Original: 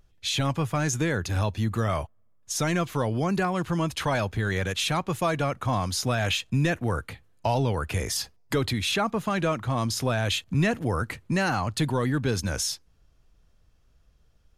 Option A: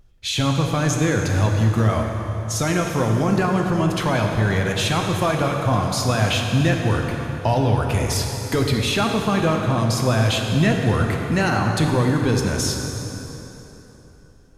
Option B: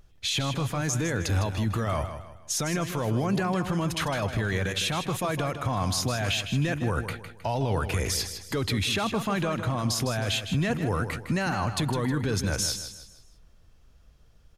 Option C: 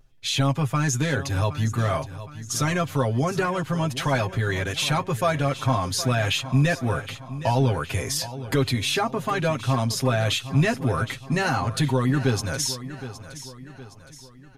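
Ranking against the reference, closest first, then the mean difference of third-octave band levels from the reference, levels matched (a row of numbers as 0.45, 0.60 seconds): C, B, A; 3.5, 5.0, 7.0 decibels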